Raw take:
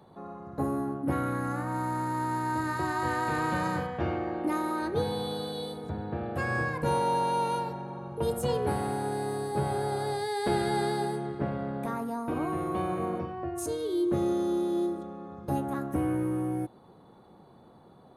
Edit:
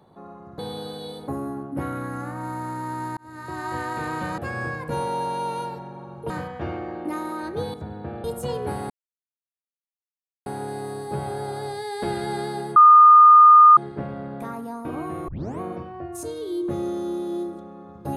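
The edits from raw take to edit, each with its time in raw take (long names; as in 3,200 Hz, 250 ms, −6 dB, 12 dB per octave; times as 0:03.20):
0:02.48–0:02.98: fade in
0:05.13–0:05.82: move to 0:00.59
0:06.32–0:08.24: move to 0:03.69
0:08.90: splice in silence 1.56 s
0:11.20: insert tone 1,220 Hz −7 dBFS 1.01 s
0:12.71: tape start 0.32 s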